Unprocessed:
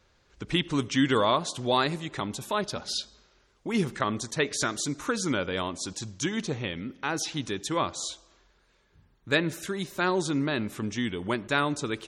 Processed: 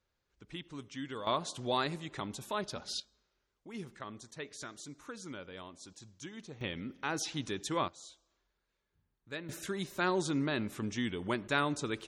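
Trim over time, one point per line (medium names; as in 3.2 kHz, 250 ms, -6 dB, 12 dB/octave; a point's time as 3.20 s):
-18 dB
from 1.27 s -7.5 dB
from 3.00 s -17 dB
from 6.61 s -5.5 dB
from 7.88 s -17.5 dB
from 9.49 s -5 dB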